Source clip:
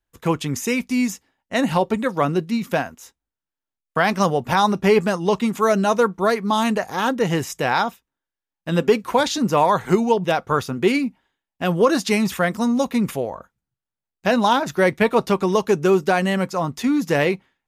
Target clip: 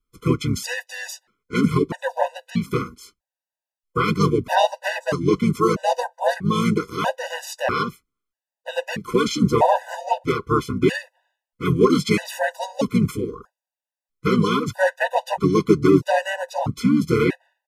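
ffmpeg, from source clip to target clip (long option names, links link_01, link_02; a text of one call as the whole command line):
ffmpeg -i in.wav -filter_complex "[0:a]asplit=4[link_01][link_02][link_03][link_04];[link_02]asetrate=22050,aresample=44100,atempo=2,volume=-11dB[link_05];[link_03]asetrate=33038,aresample=44100,atempo=1.33484,volume=-4dB[link_06];[link_04]asetrate=35002,aresample=44100,atempo=1.25992,volume=-3dB[link_07];[link_01][link_05][link_06][link_07]amix=inputs=4:normalize=0,afftfilt=real='re*gt(sin(2*PI*0.78*pts/sr)*(1-2*mod(floor(b*sr/1024/500),2)),0)':imag='im*gt(sin(2*PI*0.78*pts/sr)*(1-2*mod(floor(b*sr/1024/500),2)),0)':win_size=1024:overlap=0.75,volume=-1dB" out.wav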